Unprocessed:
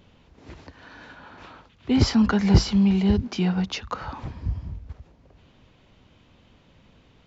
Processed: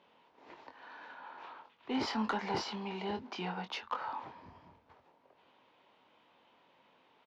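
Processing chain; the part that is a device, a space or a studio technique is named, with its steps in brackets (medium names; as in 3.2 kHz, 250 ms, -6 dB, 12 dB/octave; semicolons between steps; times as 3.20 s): intercom (band-pass 420–3700 Hz; peaking EQ 920 Hz +8 dB 0.43 oct; saturation -18 dBFS, distortion -18 dB; doubling 23 ms -7 dB); trim -7 dB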